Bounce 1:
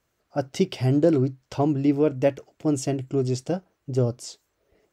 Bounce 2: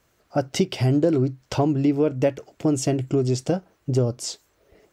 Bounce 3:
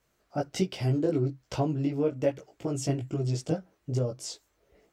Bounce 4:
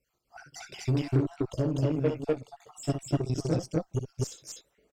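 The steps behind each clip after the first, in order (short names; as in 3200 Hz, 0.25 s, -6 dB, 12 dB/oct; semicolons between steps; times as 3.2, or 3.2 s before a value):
compressor 2.5:1, threshold -29 dBFS, peak gain reduction 10 dB; gain +8.5 dB
chorus voices 4, 1.1 Hz, delay 18 ms, depth 3.6 ms; gain -4.5 dB
random spectral dropouts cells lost 59%; loudspeakers at several distances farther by 21 m -7 dB, 85 m 0 dB; added harmonics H 7 -29 dB, 8 -26 dB, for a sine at -14 dBFS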